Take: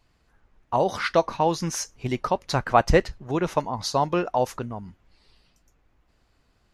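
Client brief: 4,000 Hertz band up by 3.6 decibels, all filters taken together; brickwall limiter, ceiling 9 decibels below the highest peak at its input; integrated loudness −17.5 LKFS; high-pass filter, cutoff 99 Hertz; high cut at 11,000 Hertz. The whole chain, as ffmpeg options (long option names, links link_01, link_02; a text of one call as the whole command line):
ffmpeg -i in.wav -af "highpass=99,lowpass=11000,equalizer=frequency=4000:width_type=o:gain=4.5,volume=9.5dB,alimiter=limit=-3dB:level=0:latency=1" out.wav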